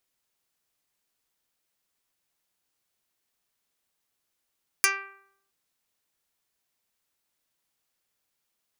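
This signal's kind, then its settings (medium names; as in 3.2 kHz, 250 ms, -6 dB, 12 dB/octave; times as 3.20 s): plucked string G4, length 0.67 s, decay 0.73 s, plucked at 0.1, dark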